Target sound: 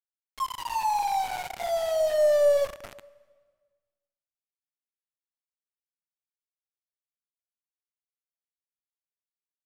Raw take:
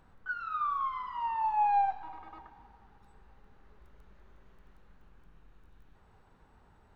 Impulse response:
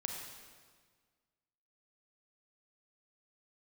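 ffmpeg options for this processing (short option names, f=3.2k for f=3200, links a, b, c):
-filter_complex "[0:a]aeval=exprs='val(0)*gte(abs(val(0)),0.0141)':c=same,asetrate=31752,aresample=44100,asplit=2[a][b];[1:a]atrim=start_sample=2205[c];[b][c]afir=irnorm=-1:irlink=0,volume=-15dB[d];[a][d]amix=inputs=2:normalize=0,volume=4.5dB"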